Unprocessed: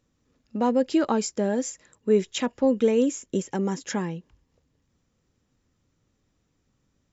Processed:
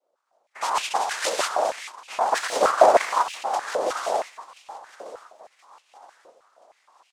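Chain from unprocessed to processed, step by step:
adaptive Wiener filter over 9 samples
camcorder AGC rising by 6.1 dB per second
in parallel at −10.5 dB: bit reduction 6 bits
0:00.82–0:01.37: on the sum: spectral tilt +3.5 dB per octave
reverb whose tail is shaped and stops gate 210 ms rising, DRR −1 dB
cochlear-implant simulation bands 2
0:02.31–0:03.55: leveller curve on the samples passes 1
on a send: repeating echo 1,027 ms, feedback 39%, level −18.5 dB
on the sum: high-pass on a step sequencer 6.4 Hz 510–2,600 Hz
level −7.5 dB

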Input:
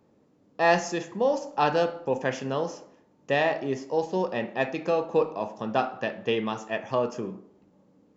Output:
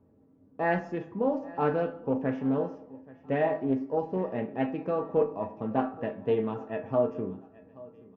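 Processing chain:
low-pass filter 1,800 Hz 12 dB per octave
low-shelf EQ 480 Hz +12 dB
tuned comb filter 89 Hz, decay 0.18 s, harmonics odd, mix 80%
repeating echo 829 ms, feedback 35%, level −21 dB
highs frequency-modulated by the lows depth 0.22 ms

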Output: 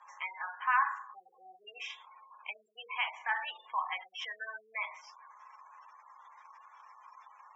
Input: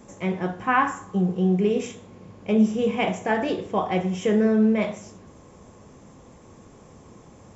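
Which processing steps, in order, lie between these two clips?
gate on every frequency bin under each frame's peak −25 dB strong
Chebyshev band-pass filter 930–5,100 Hz, order 4
downward compressor 1.5 to 1, threshold −50 dBFS, peak gain reduction 11.5 dB
level +5.5 dB

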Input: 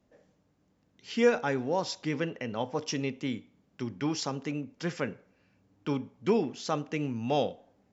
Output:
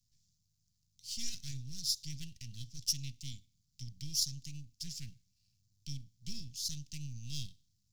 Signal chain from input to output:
gain on one half-wave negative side −12 dB
Chebyshev band-stop filter 130–4,700 Hz, order 3
low-shelf EQ 490 Hz −11 dB
level +9 dB

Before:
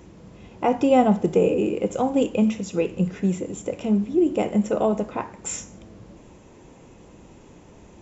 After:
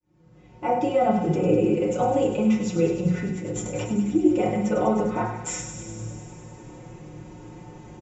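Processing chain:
fade in at the beginning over 1.43 s
parametric band 110 Hz +14 dB 0.38 octaves
comb filter 5.5 ms, depth 89%
brickwall limiter −14.5 dBFS, peak gain reduction 9 dB
0:03.29–0:03.91: compressor whose output falls as the input rises −32 dBFS, ratio −1
delay with a high-pass on its return 100 ms, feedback 77%, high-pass 2,200 Hz, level −8 dB
feedback delay network reverb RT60 0.72 s, low-frequency decay 1×, high-frequency decay 0.25×, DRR −3 dB
level −4 dB

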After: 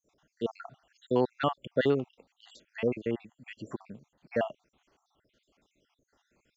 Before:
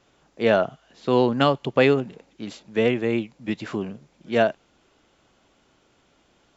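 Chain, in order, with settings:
time-frequency cells dropped at random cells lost 64%
dynamic equaliser 5,100 Hz, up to −4 dB, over −46 dBFS, Q 0.71
level −6.5 dB

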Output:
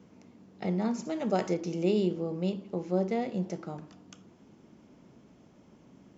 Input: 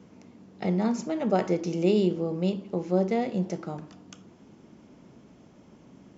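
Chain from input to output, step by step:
0:01.05–0:01.54: high-shelf EQ 5,100 Hz +11.5 dB
level −4 dB

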